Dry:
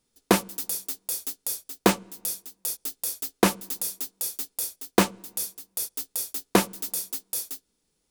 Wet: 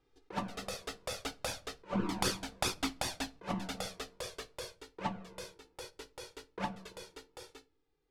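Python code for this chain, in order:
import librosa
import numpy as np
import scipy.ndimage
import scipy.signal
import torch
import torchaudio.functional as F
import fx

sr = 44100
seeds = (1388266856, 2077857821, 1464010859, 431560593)

y = fx.doppler_pass(x, sr, speed_mps=5, closest_m=2.6, pass_at_s=2.32)
y = scipy.signal.sosfilt(scipy.signal.butter(2, 2400.0, 'lowpass', fs=sr, output='sos'), y)
y = fx.over_compress(y, sr, threshold_db=-46.0, ratio=-1.0)
y = fx.env_flanger(y, sr, rest_ms=2.5, full_db=-31.0)
y = fx.room_shoebox(y, sr, seeds[0], volume_m3=200.0, walls='furnished', distance_m=0.35)
y = F.gain(torch.from_numpy(y), 11.0).numpy()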